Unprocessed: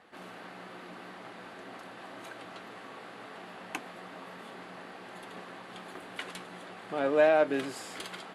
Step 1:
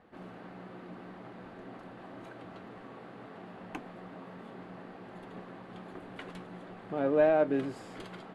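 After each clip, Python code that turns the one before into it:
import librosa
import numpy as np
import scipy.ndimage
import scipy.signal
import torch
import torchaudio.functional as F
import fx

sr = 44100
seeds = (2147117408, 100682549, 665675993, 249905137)

y = fx.tilt_eq(x, sr, slope=-3.5)
y = F.gain(torch.from_numpy(y), -4.0).numpy()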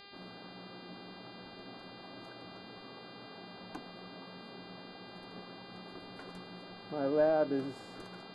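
y = fx.band_shelf(x, sr, hz=2700.0, db=-13.0, octaves=1.2)
y = fx.dmg_buzz(y, sr, base_hz=400.0, harmonics=12, level_db=-51.0, tilt_db=0, odd_only=False)
y = F.gain(torch.from_numpy(y), -3.5).numpy()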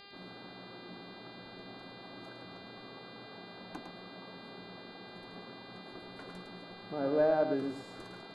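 y = x + 10.0 ** (-7.5 / 20.0) * np.pad(x, (int(107 * sr / 1000.0), 0))[:len(x)]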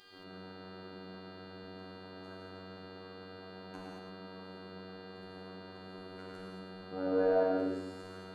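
y = fx.robotise(x, sr, hz=93.8)
y = fx.rev_gated(y, sr, seeds[0], gate_ms=250, shape='flat', drr_db=-4.5)
y = F.gain(torch.from_numpy(y), -4.0).numpy()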